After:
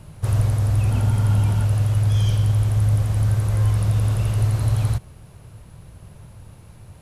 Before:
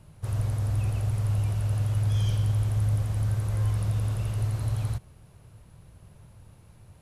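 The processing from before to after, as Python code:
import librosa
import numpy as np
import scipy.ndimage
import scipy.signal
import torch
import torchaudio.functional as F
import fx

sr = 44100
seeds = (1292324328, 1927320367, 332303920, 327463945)

p1 = fx.rider(x, sr, range_db=10, speed_s=0.5)
p2 = x + (p1 * 10.0 ** (2.5 / 20.0))
y = fx.small_body(p2, sr, hz=(230.0, 890.0, 1400.0, 3200.0), ring_ms=45, db=11, at=(0.91, 1.65))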